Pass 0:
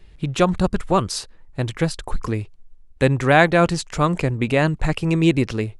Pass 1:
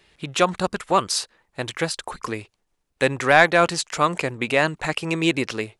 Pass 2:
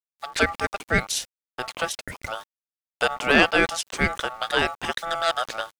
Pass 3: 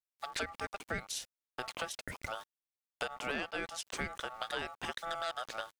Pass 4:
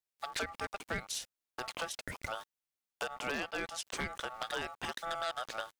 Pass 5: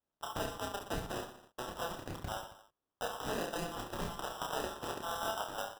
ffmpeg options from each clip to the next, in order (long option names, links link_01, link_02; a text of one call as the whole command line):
ffmpeg -i in.wav -af "highpass=frequency=750:poles=1,acontrast=20,volume=-1dB" out.wav
ffmpeg -i in.wav -af "aeval=exprs='val(0)*gte(abs(val(0)),0.00891)':channel_layout=same,aeval=exprs='val(0)*sin(2*PI*1000*n/s)':channel_layout=same" out.wav
ffmpeg -i in.wav -af "acompressor=threshold=-29dB:ratio=5,volume=-6dB" out.wav
ffmpeg -i in.wav -af "aeval=exprs='0.0473*(abs(mod(val(0)/0.0473+3,4)-2)-1)':channel_layout=same,volume=1dB" out.wav
ffmpeg -i in.wav -filter_complex "[0:a]acrusher=samples=20:mix=1:aa=0.000001,flanger=delay=3:depth=4.2:regen=-78:speed=1.7:shape=sinusoidal,asplit=2[link_01][link_02];[link_02]aecho=0:1:30|69|119.7|185.6|271.3:0.631|0.398|0.251|0.158|0.1[link_03];[link_01][link_03]amix=inputs=2:normalize=0,volume=2.5dB" out.wav